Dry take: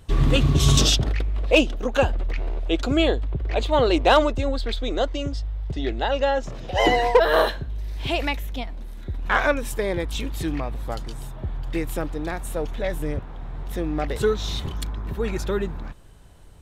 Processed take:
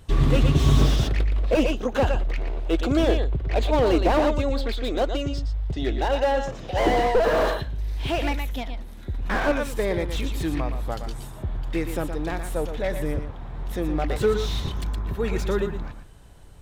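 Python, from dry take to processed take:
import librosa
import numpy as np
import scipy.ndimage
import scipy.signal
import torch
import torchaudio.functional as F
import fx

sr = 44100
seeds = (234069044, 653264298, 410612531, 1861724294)

y = x + 10.0 ** (-9.0 / 20.0) * np.pad(x, (int(117 * sr / 1000.0), 0))[:len(x)]
y = fx.slew_limit(y, sr, full_power_hz=91.0)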